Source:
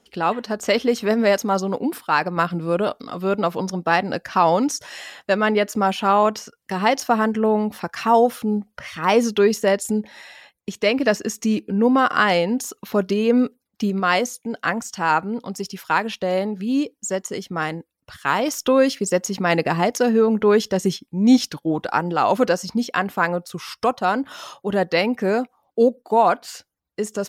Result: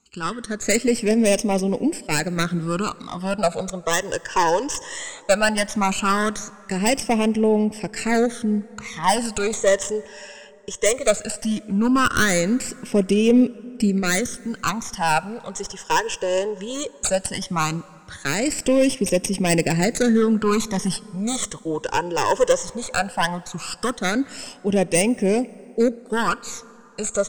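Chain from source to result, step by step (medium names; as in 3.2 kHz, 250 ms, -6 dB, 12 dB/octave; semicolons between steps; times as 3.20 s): tracing distortion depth 0.28 ms; level rider gain up to 10.5 dB; resonant low-pass 8 kHz, resonance Q 5.4; overload inside the chain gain 6 dB; phase shifter stages 12, 0.17 Hz, lowest notch 220–1400 Hz; plate-style reverb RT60 3.8 s, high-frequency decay 0.5×, DRR 20 dB; trim -2.5 dB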